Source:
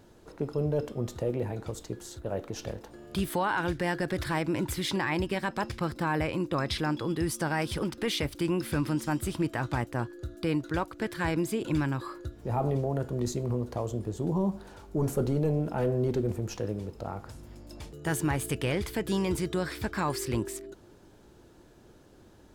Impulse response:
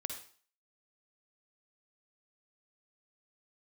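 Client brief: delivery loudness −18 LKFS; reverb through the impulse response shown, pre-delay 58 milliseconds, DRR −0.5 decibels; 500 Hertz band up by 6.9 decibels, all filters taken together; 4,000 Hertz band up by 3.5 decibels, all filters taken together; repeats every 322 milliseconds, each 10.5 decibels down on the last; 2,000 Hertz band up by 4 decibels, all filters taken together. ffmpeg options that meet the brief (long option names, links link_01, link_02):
-filter_complex "[0:a]equalizer=frequency=500:width_type=o:gain=8.5,equalizer=frequency=2000:width_type=o:gain=4,equalizer=frequency=4000:width_type=o:gain=3,aecho=1:1:322|644|966:0.299|0.0896|0.0269,asplit=2[link_01][link_02];[1:a]atrim=start_sample=2205,adelay=58[link_03];[link_02][link_03]afir=irnorm=-1:irlink=0,volume=1dB[link_04];[link_01][link_04]amix=inputs=2:normalize=0,volume=5.5dB"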